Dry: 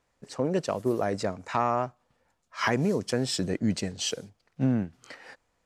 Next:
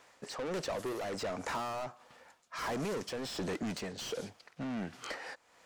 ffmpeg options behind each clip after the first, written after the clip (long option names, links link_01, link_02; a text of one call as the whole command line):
ffmpeg -i in.wav -filter_complex "[0:a]asplit=2[link_01][link_02];[link_02]highpass=frequency=720:poles=1,volume=31dB,asoftclip=type=tanh:threshold=-12dB[link_03];[link_01][link_03]amix=inputs=2:normalize=0,lowpass=frequency=7400:poles=1,volume=-6dB,tremolo=f=1.4:d=0.63,acrossover=split=1100|4600[link_04][link_05][link_06];[link_04]acompressor=threshold=-27dB:ratio=4[link_07];[link_05]acompressor=threshold=-37dB:ratio=4[link_08];[link_06]acompressor=threshold=-41dB:ratio=4[link_09];[link_07][link_08][link_09]amix=inputs=3:normalize=0,volume=-8.5dB" out.wav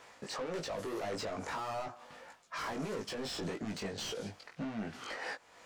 ffmpeg -i in.wav -af "highshelf=frequency=8400:gain=-5,alimiter=level_in=13dB:limit=-24dB:level=0:latency=1:release=142,volume=-13dB,flanger=delay=18:depth=2.4:speed=1.7,volume=8.5dB" out.wav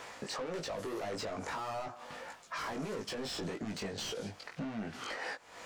ffmpeg -i in.wav -af "acompressor=threshold=-54dB:ratio=2,volume=9.5dB" out.wav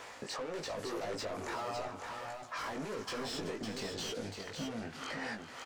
ffmpeg -i in.wav -filter_complex "[0:a]equalizer=frequency=180:width=4.7:gain=-6.5,asplit=2[link_01][link_02];[link_02]aecho=0:1:379|555:0.224|0.531[link_03];[link_01][link_03]amix=inputs=2:normalize=0,volume=-1dB" out.wav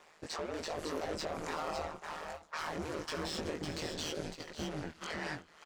ffmpeg -i in.wav -af "aeval=exprs='val(0)*sin(2*PI*78*n/s)':channel_layout=same,agate=range=-13dB:threshold=-46dB:ratio=16:detection=peak,volume=3.5dB" out.wav